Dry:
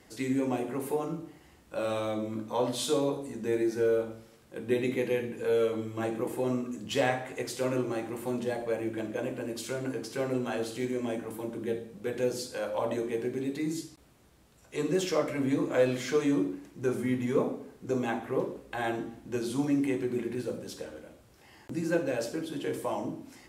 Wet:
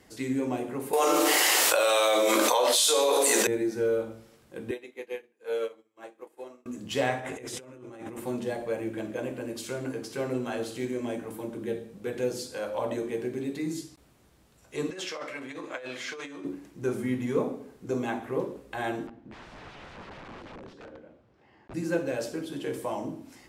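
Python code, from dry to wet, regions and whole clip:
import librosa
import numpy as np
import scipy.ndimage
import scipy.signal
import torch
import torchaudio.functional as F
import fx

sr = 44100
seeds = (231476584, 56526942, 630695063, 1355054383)

y = fx.chain(x, sr, fx.highpass(hz=450.0, slope=24),
    fx.high_shelf(hz=2200.0, db=11.5),
    fx.env_flatten(amount_pct=100), at=(0.93, 3.47))
y = fx.chain(y, sr, fx.highpass(hz=460.0, slope=12),
    fx.high_shelf(hz=7700.0, db=-3.5),
    fx.upward_expand(threshold_db=-46.0, expansion=2.5), at=(4.71, 6.66))
y = fx.chain(y, sr, fx.lowpass(hz=12000.0, slope=12),
    fx.notch(hz=4400.0, q=5.8),
    fx.over_compress(threshold_db=-42.0, ratio=-1.0), at=(7.19, 8.2))
y = fx.chain(y, sr, fx.over_compress(threshold_db=-29.0, ratio=-1.0),
    fx.bandpass_q(hz=2300.0, q=0.54), at=(14.9, 16.45))
y = fx.chain(y, sr, fx.highpass(hz=140.0, slope=6),
    fx.overflow_wrap(gain_db=35.5),
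    fx.spacing_loss(db_at_10k=32), at=(19.07, 21.74))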